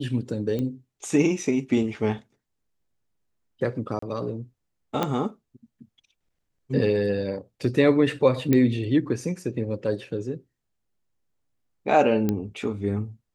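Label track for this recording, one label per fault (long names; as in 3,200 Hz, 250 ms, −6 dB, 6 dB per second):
0.590000	0.590000	click −18 dBFS
3.990000	4.020000	drop-out 34 ms
5.030000	5.030000	click −11 dBFS
8.530000	8.530000	click −9 dBFS
12.290000	12.290000	click −12 dBFS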